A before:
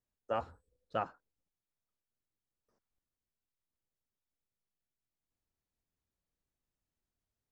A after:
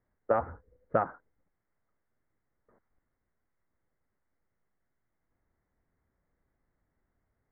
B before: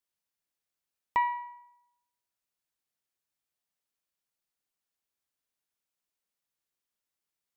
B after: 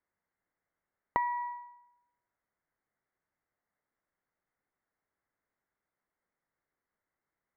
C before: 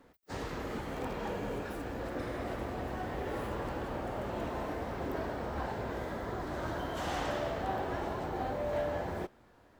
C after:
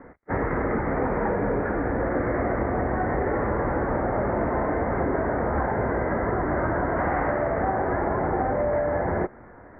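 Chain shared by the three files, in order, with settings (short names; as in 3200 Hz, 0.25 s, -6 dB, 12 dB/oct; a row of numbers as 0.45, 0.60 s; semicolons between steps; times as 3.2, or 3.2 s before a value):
Chebyshev low-pass 2100 Hz, order 6; compressor 12:1, threshold -36 dBFS; normalise peaks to -12 dBFS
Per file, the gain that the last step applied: +14.0, +8.5, +15.5 dB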